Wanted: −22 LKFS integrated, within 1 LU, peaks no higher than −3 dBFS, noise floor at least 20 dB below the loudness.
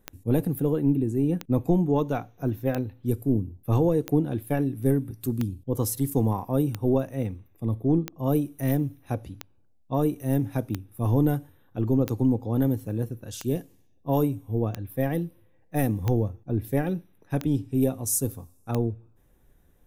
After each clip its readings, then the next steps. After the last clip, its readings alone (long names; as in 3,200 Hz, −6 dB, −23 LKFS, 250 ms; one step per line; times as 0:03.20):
number of clicks 15; integrated loudness −27.0 LKFS; sample peak −10.0 dBFS; target loudness −22.0 LKFS
→ click removal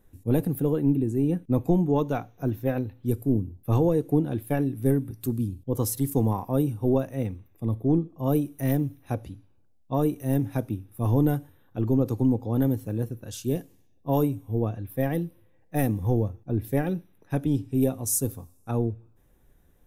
number of clicks 0; integrated loudness −27.0 LKFS; sample peak −10.5 dBFS; target loudness −22.0 LKFS
→ level +5 dB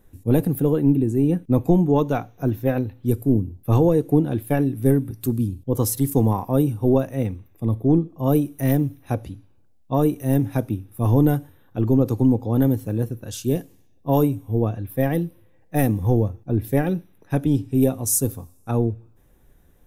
integrated loudness −22.0 LKFS; sample peak −5.5 dBFS; background noise floor −55 dBFS